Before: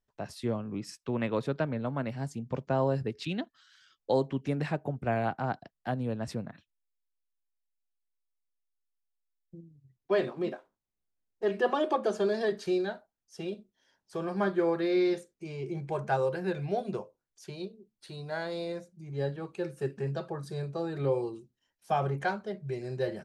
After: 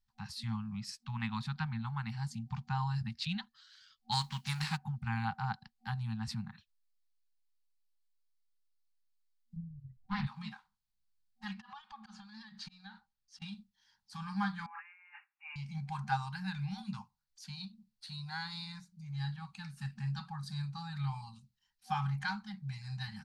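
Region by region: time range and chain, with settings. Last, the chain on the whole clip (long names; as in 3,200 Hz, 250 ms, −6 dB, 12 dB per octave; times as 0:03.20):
0:04.11–0:04.76: spectral envelope flattened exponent 0.6 + parametric band 98 Hz −3.5 dB 1.3 octaves
0:09.56–0:10.27: RIAA equalisation playback + highs frequency-modulated by the lows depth 0.28 ms
0:11.53–0:13.42: volume swells 201 ms + downward compressor 16 to 1, threshold −39 dBFS + high-frequency loss of the air 74 metres
0:14.66–0:15.56: compressor whose output falls as the input rises −36 dBFS + linear-phase brick-wall band-pass 350–2,900 Hz
whole clip: low-shelf EQ 62 Hz +9.5 dB; brick-wall band-stop 230–760 Hz; parametric band 4,400 Hz +9.5 dB 0.53 octaves; level −3 dB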